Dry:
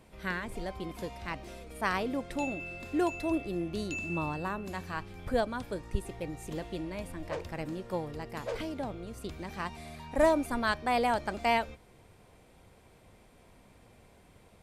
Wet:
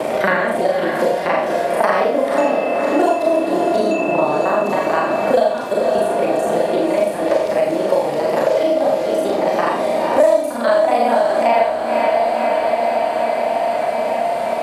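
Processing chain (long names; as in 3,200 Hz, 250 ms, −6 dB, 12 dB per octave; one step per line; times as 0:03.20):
reversed piece by piece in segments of 34 ms
high-pass filter 220 Hz 12 dB per octave
parametric band 620 Hz +13 dB 0.79 octaves
on a send: feedback delay with all-pass diffusion 527 ms, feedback 62%, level −7.5 dB
on the sum: four-comb reverb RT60 0.47 s, combs from 27 ms, DRR −2 dB
multiband upward and downward compressor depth 100%
level +6.5 dB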